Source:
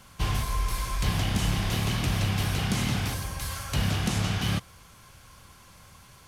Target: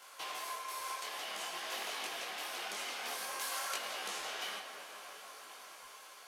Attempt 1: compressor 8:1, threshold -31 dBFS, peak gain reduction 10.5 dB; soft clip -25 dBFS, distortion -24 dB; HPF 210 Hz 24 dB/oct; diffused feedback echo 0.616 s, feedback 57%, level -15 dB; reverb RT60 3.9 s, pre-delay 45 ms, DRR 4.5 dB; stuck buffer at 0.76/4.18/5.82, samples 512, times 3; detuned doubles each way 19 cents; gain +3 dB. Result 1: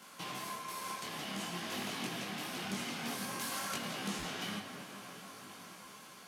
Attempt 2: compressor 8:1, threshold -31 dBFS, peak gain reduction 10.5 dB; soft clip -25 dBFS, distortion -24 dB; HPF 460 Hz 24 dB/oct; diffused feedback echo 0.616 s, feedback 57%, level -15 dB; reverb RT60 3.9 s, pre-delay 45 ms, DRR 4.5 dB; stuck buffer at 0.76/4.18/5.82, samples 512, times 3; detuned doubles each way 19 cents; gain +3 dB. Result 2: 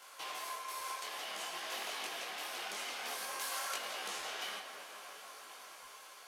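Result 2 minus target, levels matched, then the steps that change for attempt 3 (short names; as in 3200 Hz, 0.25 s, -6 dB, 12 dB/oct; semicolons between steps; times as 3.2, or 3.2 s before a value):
soft clip: distortion +14 dB
change: soft clip -17 dBFS, distortion -38 dB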